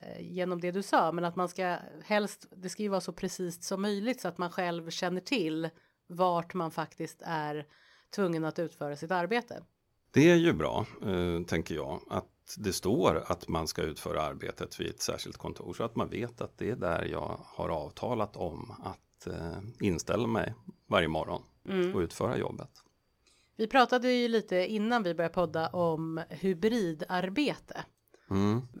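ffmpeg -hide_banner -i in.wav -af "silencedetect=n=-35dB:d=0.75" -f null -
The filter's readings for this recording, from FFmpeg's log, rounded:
silence_start: 22.62
silence_end: 23.59 | silence_duration: 0.97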